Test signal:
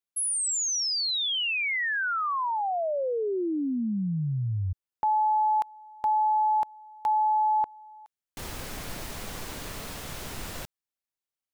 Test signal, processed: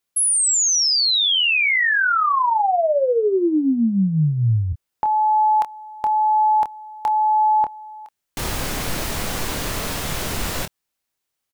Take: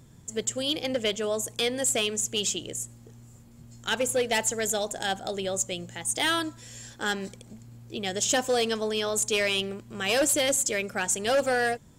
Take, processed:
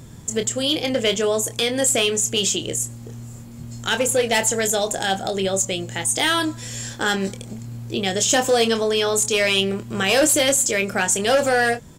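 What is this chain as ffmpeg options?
-filter_complex "[0:a]asplit=2[a][b];[b]acompressor=threshold=-38dB:ratio=6:attack=36:release=20:detection=peak,volume=-1.5dB[c];[a][c]amix=inputs=2:normalize=0,alimiter=limit=-18.5dB:level=0:latency=1:release=379,asplit=2[d][e];[e]adelay=26,volume=-8.5dB[f];[d][f]amix=inputs=2:normalize=0,volume=6.5dB"

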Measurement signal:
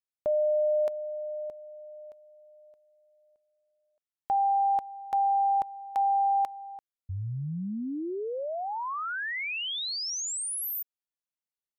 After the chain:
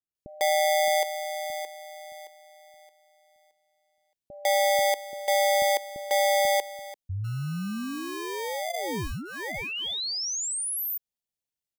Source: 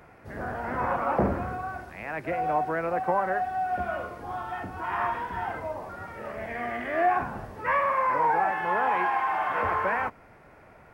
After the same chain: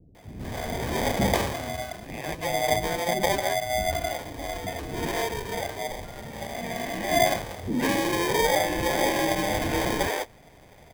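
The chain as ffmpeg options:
-filter_complex "[0:a]acrossover=split=2100[a][b];[a]acrusher=samples=32:mix=1:aa=0.000001[c];[c][b]amix=inputs=2:normalize=0,acrossover=split=350[d][e];[e]adelay=150[f];[d][f]amix=inputs=2:normalize=0,volume=2.5dB"

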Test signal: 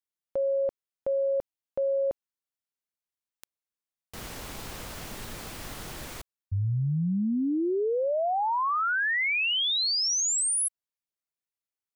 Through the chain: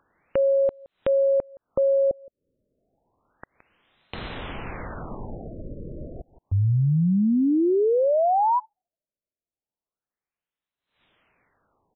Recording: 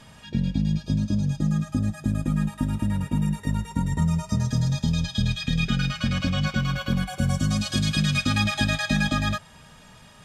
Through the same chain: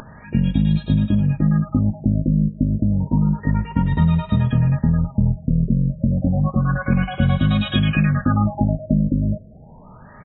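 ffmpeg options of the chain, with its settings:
-filter_complex "[0:a]asplit=2[a][b];[b]adelay=169.1,volume=-28dB,highshelf=f=4k:g=-3.8[c];[a][c]amix=inputs=2:normalize=0,acompressor=mode=upward:threshold=-44dB:ratio=2.5:attack=18:release=148:knee=2.83:detection=peak,afftfilt=real='re*lt(b*sr/1024,600*pow(4200/600,0.5+0.5*sin(2*PI*0.3*pts/sr)))':imag='im*lt(b*sr/1024,600*pow(4200/600,0.5+0.5*sin(2*PI*0.3*pts/sr)))':win_size=1024:overlap=0.75,volume=6.5dB"

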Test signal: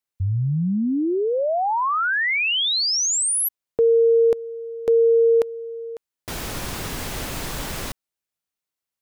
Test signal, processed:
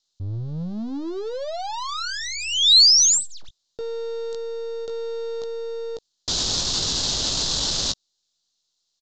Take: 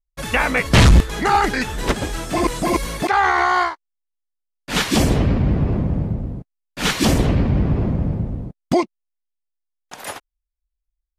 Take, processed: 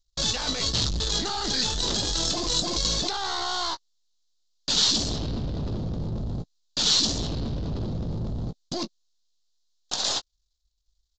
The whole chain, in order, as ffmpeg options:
-filter_complex "[0:a]aeval=exprs='if(lt(val(0),0),0.447*val(0),val(0))':c=same,areverse,acompressor=threshold=-29dB:ratio=12:attack=0.74:release=53:knee=1:detection=peak,areverse,asplit=2[a][b];[b]adelay=18,volume=-11dB[c];[a][c]amix=inputs=2:normalize=0,acontrast=83,aresample=16000,asoftclip=type=tanh:threshold=-24.5dB,aresample=44100,highshelf=f=3k:t=q:w=3:g=10.5"

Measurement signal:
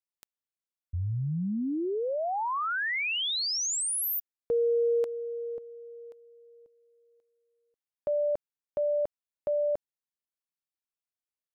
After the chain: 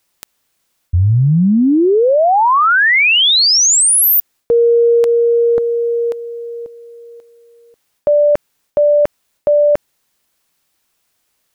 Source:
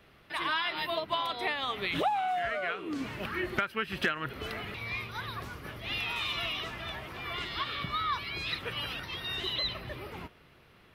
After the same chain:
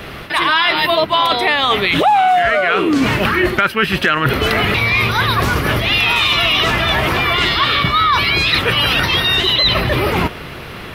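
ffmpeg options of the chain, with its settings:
-af "areverse,acompressor=threshold=-39dB:ratio=6:attack=2.4:release=246:knee=1:detection=peak,areverse,alimiter=level_in=30dB:limit=-1dB:release=50:level=0:latency=1,volume=-1dB"

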